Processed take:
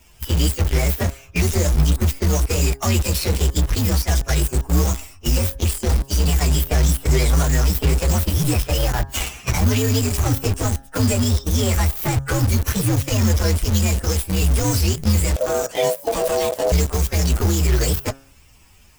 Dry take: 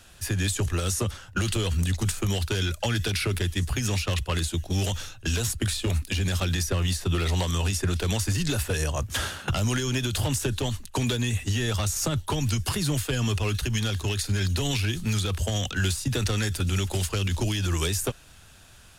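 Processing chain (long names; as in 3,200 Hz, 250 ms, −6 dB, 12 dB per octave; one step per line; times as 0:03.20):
partials spread apart or drawn together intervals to 130%
in parallel at −3 dB: bit reduction 5 bits
on the sum: hum removal 135.8 Hz, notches 13
0:15.36–0:16.72: ring modulation 570 Hz
level +5.5 dB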